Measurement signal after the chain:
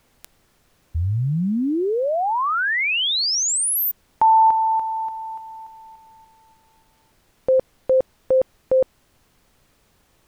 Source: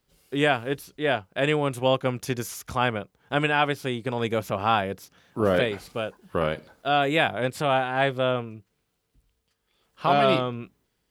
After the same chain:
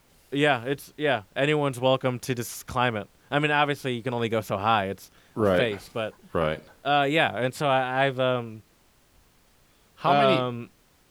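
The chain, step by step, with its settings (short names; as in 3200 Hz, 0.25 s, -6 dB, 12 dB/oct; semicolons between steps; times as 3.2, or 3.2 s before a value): added noise pink -61 dBFS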